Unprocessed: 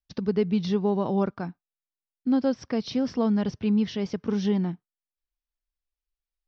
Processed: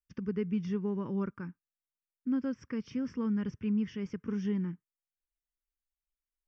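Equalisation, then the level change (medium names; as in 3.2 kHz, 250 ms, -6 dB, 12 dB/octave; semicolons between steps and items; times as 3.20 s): static phaser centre 1.7 kHz, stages 4; -6.0 dB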